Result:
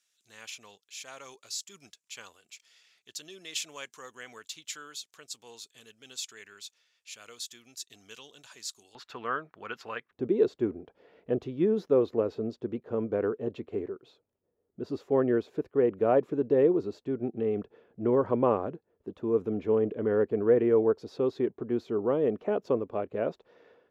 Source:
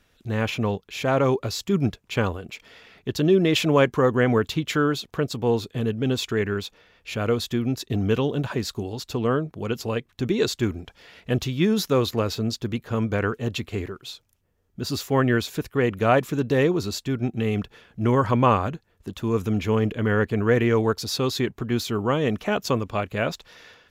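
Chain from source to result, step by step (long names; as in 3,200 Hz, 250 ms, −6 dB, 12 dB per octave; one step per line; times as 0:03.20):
resonant band-pass 7,400 Hz, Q 1.7, from 0:08.95 1,500 Hz, from 0:10.11 430 Hz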